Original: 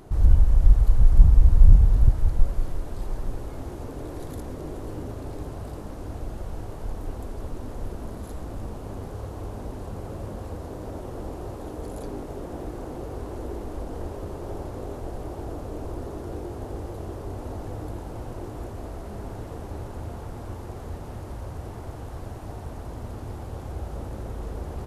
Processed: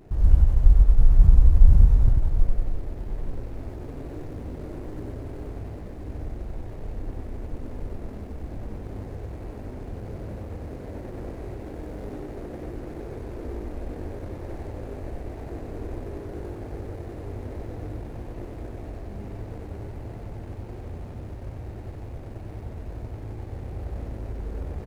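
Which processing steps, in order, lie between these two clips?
running median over 41 samples
on a send: single-tap delay 94 ms −3 dB
on the sum: level −2 dB

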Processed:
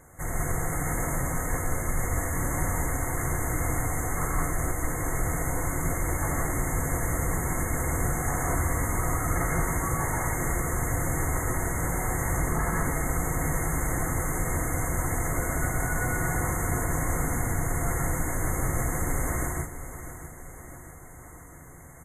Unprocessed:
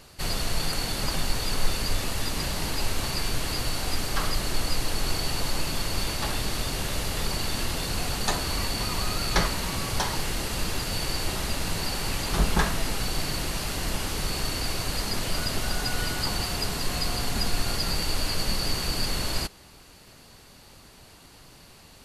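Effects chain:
brick-wall band-stop 2,200–6,200 Hz
brickwall limiter −19.5 dBFS, peak gain reduction 9.5 dB
notch comb filter 200 Hz
repeating echo 649 ms, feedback 56%, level −13 dB
reverb whose tail is shaped and stops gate 210 ms rising, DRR −2.5 dB

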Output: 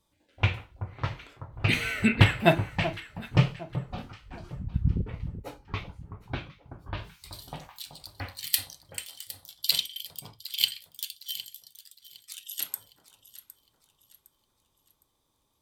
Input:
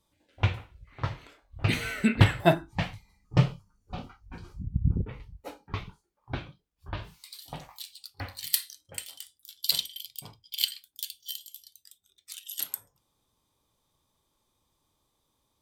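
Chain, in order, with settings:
delay that swaps between a low-pass and a high-pass 380 ms, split 1,300 Hz, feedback 59%, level −11 dB
dynamic equaliser 2,500 Hz, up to +6 dB, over −46 dBFS, Q 1.8

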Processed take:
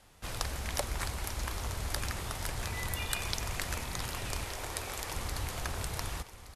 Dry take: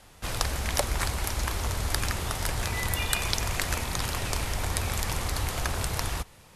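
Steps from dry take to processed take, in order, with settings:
0:04.44–0:05.15: low shelf with overshoot 270 Hz −7 dB, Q 1.5
single-tap delay 1,170 ms −13.5 dB
level −7 dB

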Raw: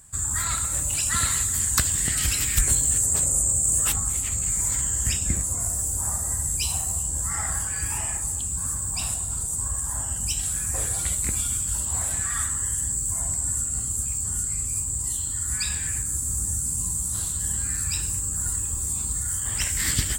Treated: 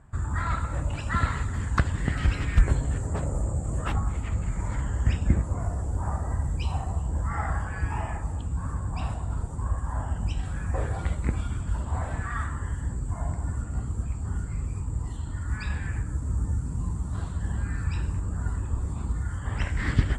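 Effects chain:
low-pass filter 1,300 Hz 12 dB per octave
level +5.5 dB

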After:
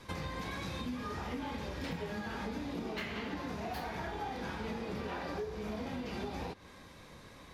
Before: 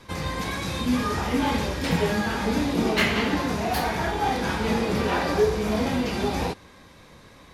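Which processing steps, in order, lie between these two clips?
dynamic equaliser 9,400 Hz, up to −7 dB, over −52 dBFS, Q 0.82
downward compressor 10 to 1, threshold −32 dBFS, peak gain reduction 16.5 dB
level −4 dB

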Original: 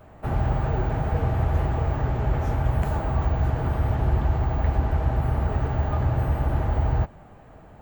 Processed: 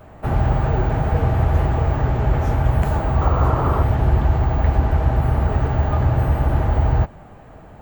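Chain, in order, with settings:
sound drawn into the spectrogram noise, 0:03.21–0:03.83, 270–1,400 Hz −30 dBFS
level +5.5 dB

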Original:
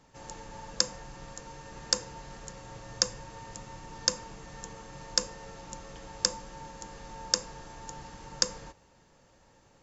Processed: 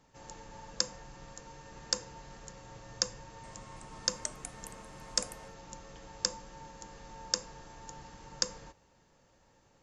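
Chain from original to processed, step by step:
0:03.11–0:05.54: delay with pitch and tempo change per echo 327 ms, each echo +3 semitones, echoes 3, each echo −6 dB
level −4.5 dB

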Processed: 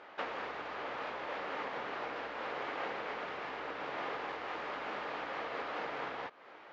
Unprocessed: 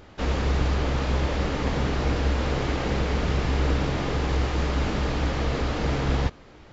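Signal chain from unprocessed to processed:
downward compressor 5 to 1, threshold −30 dBFS, peak gain reduction 11 dB
band-pass filter 670–2,300 Hz
level +2.5 dB

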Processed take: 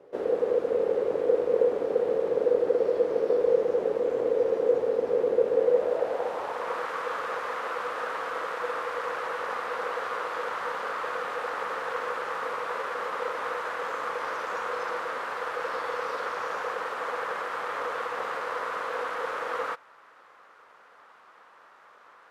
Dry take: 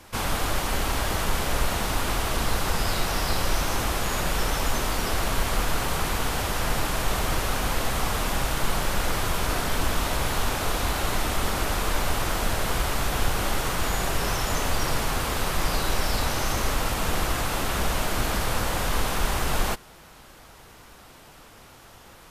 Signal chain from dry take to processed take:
ring modulation 490 Hz
band-pass filter sweep 430 Hz → 1,200 Hz, 0:05.54–0:06.87
level +5 dB

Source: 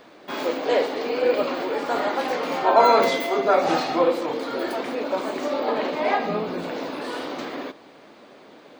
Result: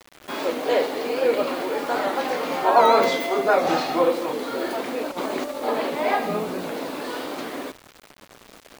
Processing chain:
0:05.11–0:05.64: compressor whose output falls as the input rises −28 dBFS, ratio −0.5
bit reduction 7 bits
wow of a warped record 78 rpm, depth 100 cents

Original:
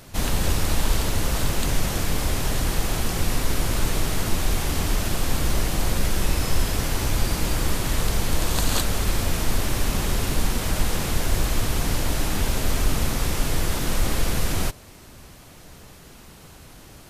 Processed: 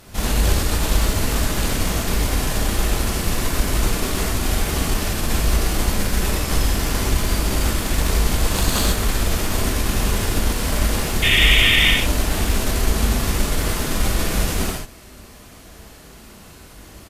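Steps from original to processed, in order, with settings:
harmonic generator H 4 −18 dB, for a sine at −4 dBFS
sound drawn into the spectrogram noise, 0:11.22–0:11.91, 1,800–3,700 Hz −19 dBFS
reverb whose tail is shaped and stops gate 170 ms flat, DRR −2.5 dB
pitch-shifted copies added −7 semitones −17 dB
level −1 dB

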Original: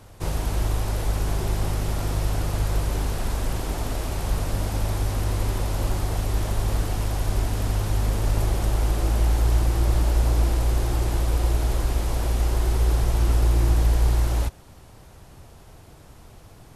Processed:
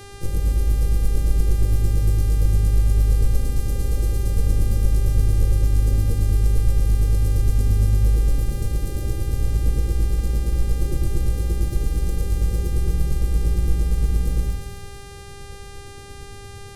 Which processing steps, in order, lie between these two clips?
in parallel at −5 dB: wave folding −25 dBFS
on the sum: bass and treble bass −4 dB, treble +7 dB
soft clipping −19.5 dBFS, distortion −17 dB
brick-wall band-stop 600–3,900 Hz
square-wave tremolo 8.7 Hz, depth 60%, duty 25%
drawn EQ curve 110 Hz 0 dB, 4,200 Hz −17 dB, 11,000 Hz −12 dB
echo with a time of its own for lows and highs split 620 Hz, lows 98 ms, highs 247 ms, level −5 dB
rectangular room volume 61 cubic metres, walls mixed, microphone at 0.6 metres
hum with harmonics 400 Hz, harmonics 28, −48 dBFS −4 dB per octave
level +5 dB

